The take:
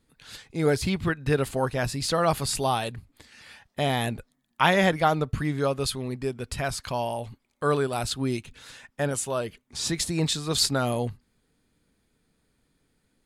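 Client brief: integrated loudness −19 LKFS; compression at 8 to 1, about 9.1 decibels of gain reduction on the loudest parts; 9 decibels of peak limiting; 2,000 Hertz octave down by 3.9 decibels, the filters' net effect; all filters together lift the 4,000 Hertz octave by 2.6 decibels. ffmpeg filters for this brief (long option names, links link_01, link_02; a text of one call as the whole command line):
ffmpeg -i in.wav -af "equalizer=frequency=2000:width_type=o:gain=-6,equalizer=frequency=4000:width_type=o:gain=4.5,acompressor=threshold=-26dB:ratio=8,volume=14.5dB,alimiter=limit=-8dB:level=0:latency=1" out.wav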